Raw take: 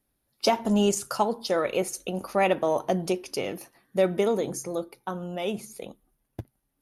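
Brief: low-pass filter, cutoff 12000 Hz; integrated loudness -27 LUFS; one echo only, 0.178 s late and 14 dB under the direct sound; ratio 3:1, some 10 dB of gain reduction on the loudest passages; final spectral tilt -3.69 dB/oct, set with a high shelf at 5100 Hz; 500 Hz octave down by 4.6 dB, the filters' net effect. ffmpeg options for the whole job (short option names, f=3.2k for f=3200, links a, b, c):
-af "lowpass=12k,equalizer=f=500:t=o:g=-6,highshelf=f=5.1k:g=4.5,acompressor=threshold=-34dB:ratio=3,aecho=1:1:178:0.2,volume=10dB"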